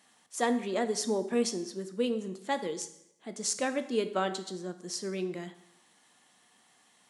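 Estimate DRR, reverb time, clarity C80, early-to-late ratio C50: 9.0 dB, 0.80 s, 15.0 dB, 12.5 dB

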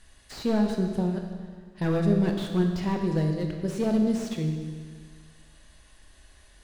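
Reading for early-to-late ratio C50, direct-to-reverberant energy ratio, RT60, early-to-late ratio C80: 5.0 dB, 3.0 dB, 1.8 s, 6.0 dB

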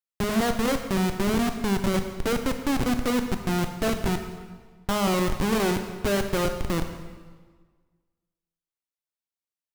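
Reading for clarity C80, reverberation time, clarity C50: 9.0 dB, 1.5 s, 8.0 dB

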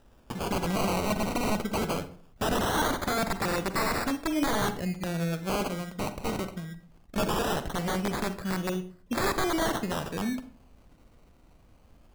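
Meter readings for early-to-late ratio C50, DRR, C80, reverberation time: 12.5 dB, 10.0 dB, 17.5 dB, 0.45 s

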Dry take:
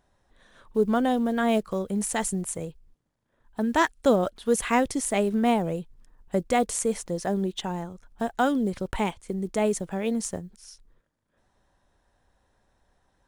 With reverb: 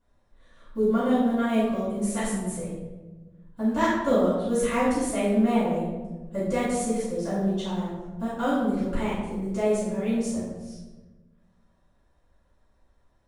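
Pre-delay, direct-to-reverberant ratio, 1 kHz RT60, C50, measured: 4 ms, -14.5 dB, 1.0 s, 0.0 dB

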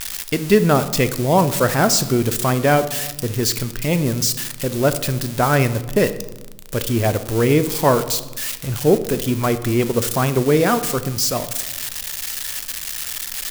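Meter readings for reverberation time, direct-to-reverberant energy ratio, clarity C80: 1.1 s, 11.0 dB, 16.0 dB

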